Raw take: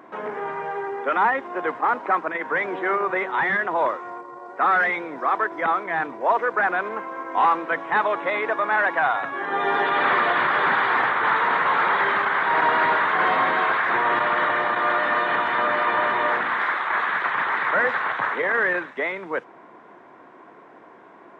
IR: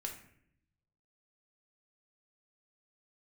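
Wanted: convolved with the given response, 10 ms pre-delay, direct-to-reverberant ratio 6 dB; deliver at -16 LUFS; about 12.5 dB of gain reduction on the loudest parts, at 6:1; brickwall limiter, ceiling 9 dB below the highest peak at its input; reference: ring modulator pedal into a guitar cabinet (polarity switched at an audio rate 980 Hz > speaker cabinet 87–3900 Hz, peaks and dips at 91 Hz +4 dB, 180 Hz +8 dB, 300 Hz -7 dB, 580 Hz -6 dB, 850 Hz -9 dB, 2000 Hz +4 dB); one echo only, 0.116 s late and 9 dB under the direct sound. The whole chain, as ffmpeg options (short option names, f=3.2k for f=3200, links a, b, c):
-filter_complex "[0:a]acompressor=threshold=-30dB:ratio=6,alimiter=level_in=3.5dB:limit=-24dB:level=0:latency=1,volume=-3.5dB,aecho=1:1:116:0.355,asplit=2[a][b];[1:a]atrim=start_sample=2205,adelay=10[c];[b][c]afir=irnorm=-1:irlink=0,volume=-5dB[d];[a][d]amix=inputs=2:normalize=0,aeval=exprs='val(0)*sgn(sin(2*PI*980*n/s))':c=same,highpass=87,equalizer=f=91:t=q:w=4:g=4,equalizer=f=180:t=q:w=4:g=8,equalizer=f=300:t=q:w=4:g=-7,equalizer=f=580:t=q:w=4:g=-6,equalizer=f=850:t=q:w=4:g=-9,equalizer=f=2k:t=q:w=4:g=4,lowpass=f=3.9k:w=0.5412,lowpass=f=3.9k:w=1.3066,volume=16.5dB"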